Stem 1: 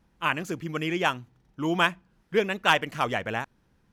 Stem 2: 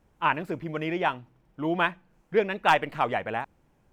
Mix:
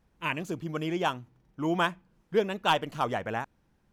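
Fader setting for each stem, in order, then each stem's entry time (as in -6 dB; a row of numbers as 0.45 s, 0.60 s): -5.0 dB, -8.5 dB; 0.00 s, 0.00 s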